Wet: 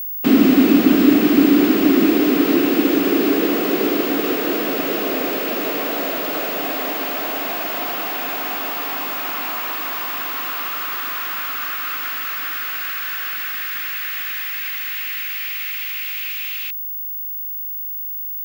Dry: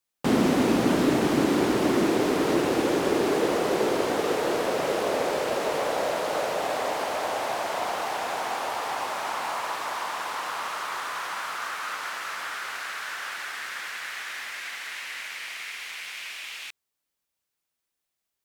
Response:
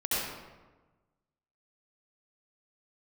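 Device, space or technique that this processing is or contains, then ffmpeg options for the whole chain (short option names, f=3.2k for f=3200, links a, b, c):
old television with a line whistle: -af "highpass=f=180:w=0.5412,highpass=f=180:w=1.3066,equalizer=f=190:t=q:w=4:g=3,equalizer=f=280:t=q:w=4:g=10,equalizer=f=550:t=q:w=4:g=-7,equalizer=f=900:t=q:w=4:g=-9,equalizer=f=2.7k:t=q:w=4:g=5,equalizer=f=6.2k:t=q:w=4:g=-5,lowpass=f=8.1k:w=0.5412,lowpass=f=8.1k:w=1.3066,aeval=exprs='val(0)+0.0355*sin(2*PI*15625*n/s)':c=same,volume=4.5dB"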